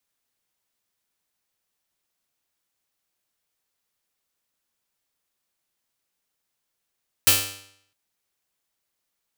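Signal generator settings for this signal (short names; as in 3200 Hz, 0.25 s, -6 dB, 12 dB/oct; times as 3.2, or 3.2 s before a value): plucked string G2, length 0.66 s, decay 0.68 s, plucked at 0.47, bright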